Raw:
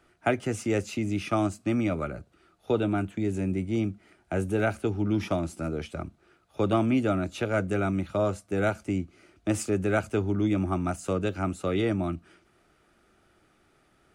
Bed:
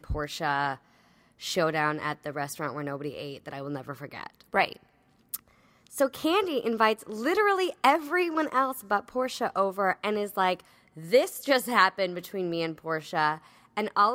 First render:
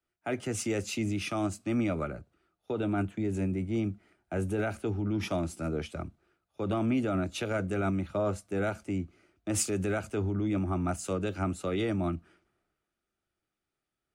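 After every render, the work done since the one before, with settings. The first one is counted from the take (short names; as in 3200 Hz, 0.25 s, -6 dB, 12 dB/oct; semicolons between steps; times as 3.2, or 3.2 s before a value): limiter -21.5 dBFS, peak gain reduction 9.5 dB; three-band expander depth 70%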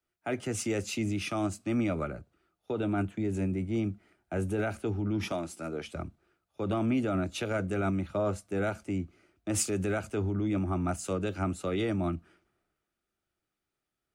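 5.32–5.87 HPF 360 Hz 6 dB/oct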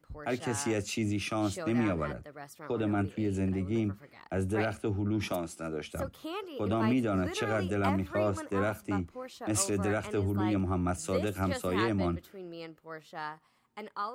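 add bed -13.5 dB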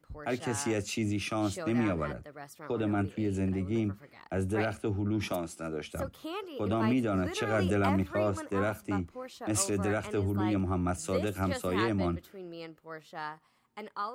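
7.53–8.03 fast leveller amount 70%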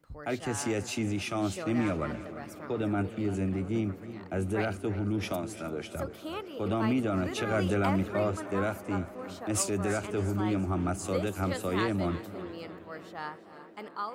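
tape echo 0.305 s, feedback 90%, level -18 dB, low-pass 4000 Hz; warbling echo 0.342 s, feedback 38%, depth 54 cents, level -15 dB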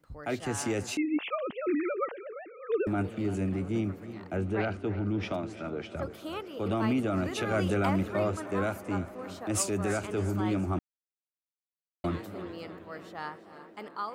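0.97–2.87 sine-wave speech; 4.36–6.03 LPF 3900 Hz; 10.79–12.04 mute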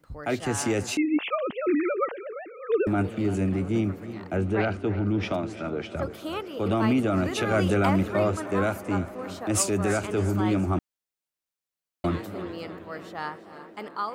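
gain +5 dB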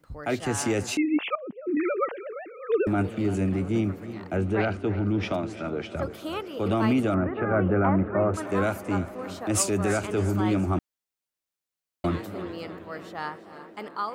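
1.35–1.77 band-pass 210 Hz, Q 1.3; 7.14–8.34 inverse Chebyshev low-pass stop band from 7200 Hz, stop band 70 dB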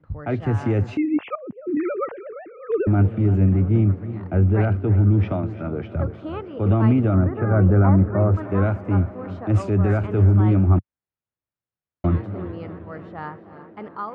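LPF 1800 Hz 12 dB/oct; bell 100 Hz +13.5 dB 1.7 oct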